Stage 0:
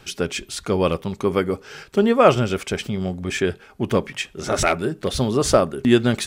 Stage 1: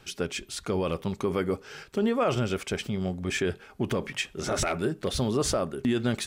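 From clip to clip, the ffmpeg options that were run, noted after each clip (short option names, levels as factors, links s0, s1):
-af "dynaudnorm=f=250:g=7:m=3.76,alimiter=limit=0.299:level=0:latency=1:release=31,volume=0.473"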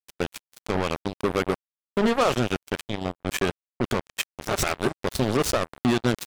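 -af "areverse,acompressor=mode=upward:threshold=0.0158:ratio=2.5,areverse,acrusher=bits=3:mix=0:aa=0.5,volume=1.41"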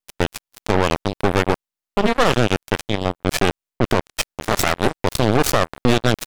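-af "aeval=exprs='max(val(0),0)':c=same,volume=2.82"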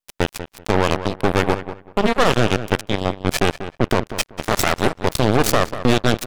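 -filter_complex "[0:a]asplit=2[s0][s1];[s1]adelay=191,lowpass=f=2600:p=1,volume=0.266,asplit=2[s2][s3];[s3]adelay=191,lowpass=f=2600:p=1,volume=0.22,asplit=2[s4][s5];[s5]adelay=191,lowpass=f=2600:p=1,volume=0.22[s6];[s0][s2][s4][s6]amix=inputs=4:normalize=0"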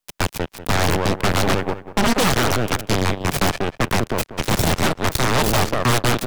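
-filter_complex "[0:a]acrossover=split=130[s0][s1];[s0]acrusher=bits=5:mode=log:mix=0:aa=0.000001[s2];[s2][s1]amix=inputs=2:normalize=0,aeval=exprs='0.119*(abs(mod(val(0)/0.119+3,4)-2)-1)':c=same,volume=2.24"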